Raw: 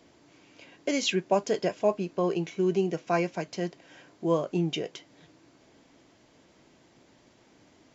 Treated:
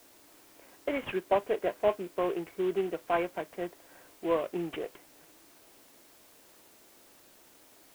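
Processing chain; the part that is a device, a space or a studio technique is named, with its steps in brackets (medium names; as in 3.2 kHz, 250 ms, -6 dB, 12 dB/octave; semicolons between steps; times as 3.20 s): local Wiener filter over 15 samples; army field radio (band-pass 370–3200 Hz; CVSD coder 16 kbps; white noise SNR 25 dB)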